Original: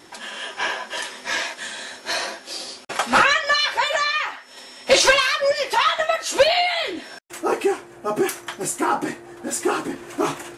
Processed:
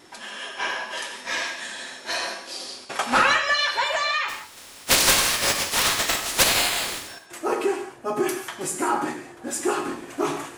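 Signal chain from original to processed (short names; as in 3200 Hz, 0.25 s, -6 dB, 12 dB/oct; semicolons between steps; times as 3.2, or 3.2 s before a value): 4.28–7.07 spectral contrast lowered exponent 0.23; non-linear reverb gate 0.2 s flat, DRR 5 dB; gain -3.5 dB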